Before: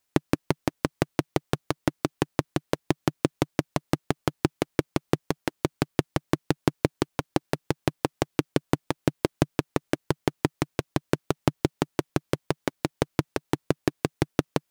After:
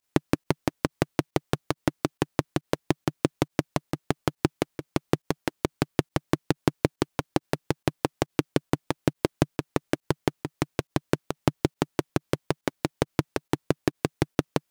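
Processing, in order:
fake sidechain pumping 138 BPM, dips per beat 1, −16 dB, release 63 ms

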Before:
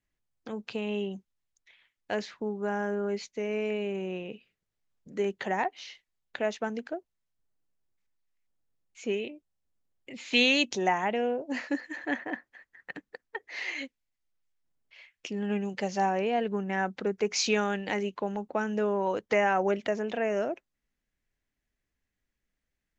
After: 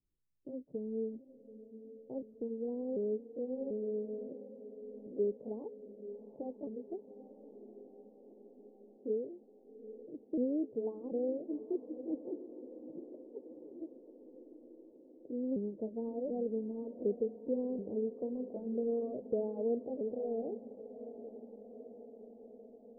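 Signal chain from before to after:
pitch shifter swept by a sawtooth +4.5 semitones, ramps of 741 ms
Butterworth low-pass 510 Hz 36 dB per octave
dynamic equaliser 180 Hz, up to −5 dB, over −47 dBFS, Q 1.3
on a send: feedback delay with all-pass diffusion 793 ms, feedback 67%, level −13 dB
on the sum: level −1.5 dB

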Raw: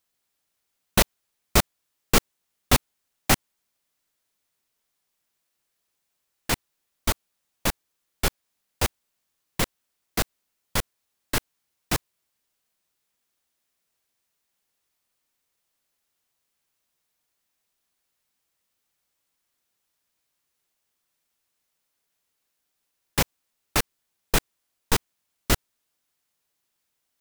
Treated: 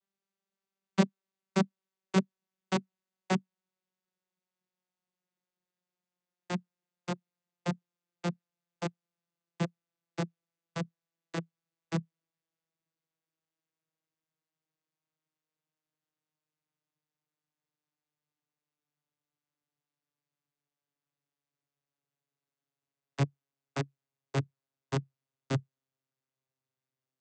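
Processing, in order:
vocoder with a gliding carrier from G3, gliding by −7 semitones
level −4.5 dB

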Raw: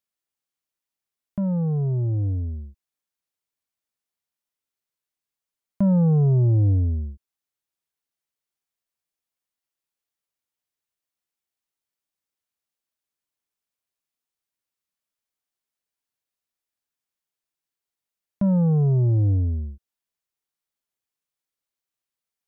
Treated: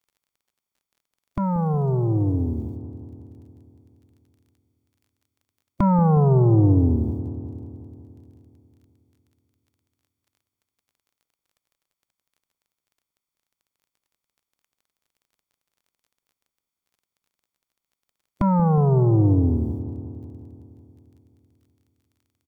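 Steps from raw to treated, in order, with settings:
ceiling on every frequency bin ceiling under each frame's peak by 21 dB
comb filter 0.9 ms, depth 66%
surface crackle 24 per second −51 dBFS
delay with a low-pass on its return 182 ms, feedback 67%, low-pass 660 Hz, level −11 dB

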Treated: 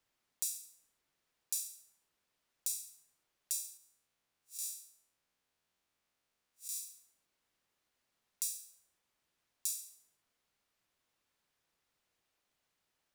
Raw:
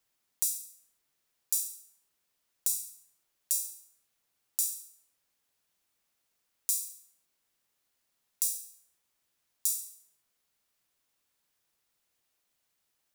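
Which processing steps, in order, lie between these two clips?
0:03.77–0:06.77: spectrum smeared in time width 107 ms
low-pass filter 3,600 Hz 6 dB per octave
level +1 dB

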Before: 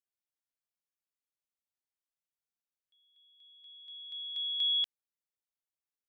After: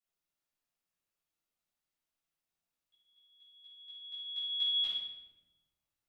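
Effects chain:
rectangular room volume 520 cubic metres, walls mixed, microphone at 6.6 metres
level −8.5 dB

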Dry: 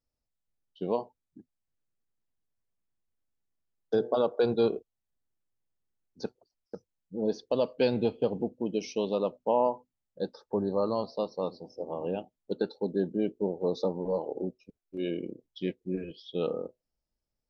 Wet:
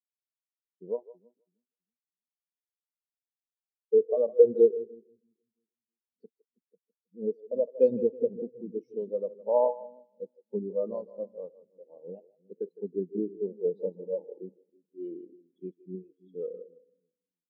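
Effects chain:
echo with a time of its own for lows and highs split 310 Hz, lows 326 ms, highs 159 ms, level −7 dB
every bin expanded away from the loudest bin 2.5 to 1
level +6 dB

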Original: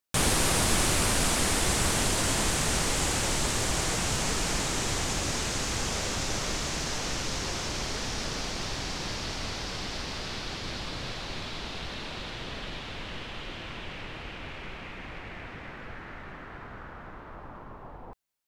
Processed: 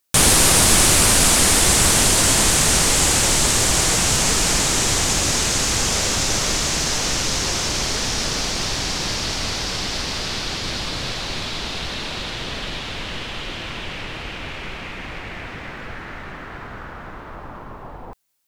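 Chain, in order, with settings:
high-shelf EQ 4,000 Hz +7 dB
level +8 dB

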